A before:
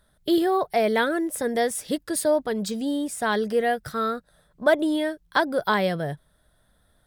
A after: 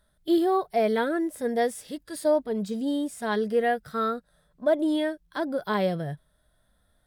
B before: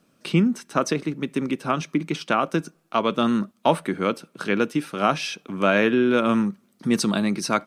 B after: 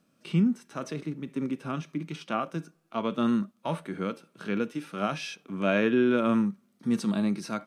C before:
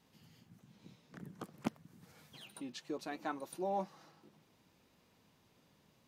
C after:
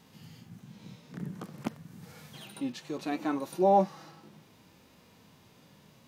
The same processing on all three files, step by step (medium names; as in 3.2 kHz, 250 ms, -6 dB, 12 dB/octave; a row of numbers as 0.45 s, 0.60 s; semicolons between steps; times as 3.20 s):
harmonic-percussive split percussive -12 dB; peak normalisation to -12 dBFS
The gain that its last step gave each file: -1.0 dB, -3.0 dB, +14.5 dB